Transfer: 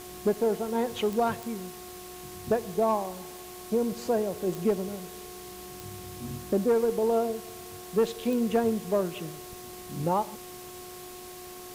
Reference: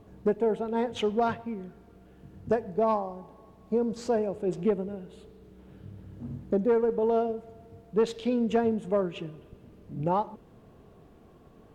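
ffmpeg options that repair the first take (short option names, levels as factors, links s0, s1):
-af "adeclick=t=4,bandreject=f=362.3:t=h:w=4,bandreject=f=724.6:t=h:w=4,bandreject=f=1086.9:t=h:w=4,afwtdn=0.005"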